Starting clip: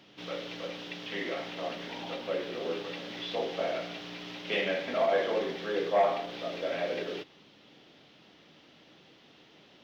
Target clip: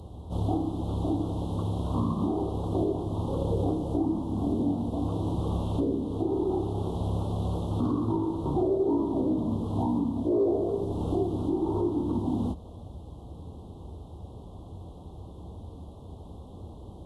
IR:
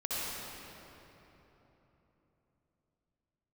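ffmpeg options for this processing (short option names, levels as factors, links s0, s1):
-filter_complex "[0:a]asuperstop=centerf=3300:order=8:qfactor=0.66,asplit=2[s0][s1];[s1]acompressor=threshold=0.0112:ratio=6,volume=1.12[s2];[s0][s2]amix=inputs=2:normalize=0,alimiter=level_in=1.19:limit=0.0631:level=0:latency=1:release=347,volume=0.841,lowshelf=f=170:t=q:w=1.5:g=13,asetrate=25442,aresample=44100,volume=2.51"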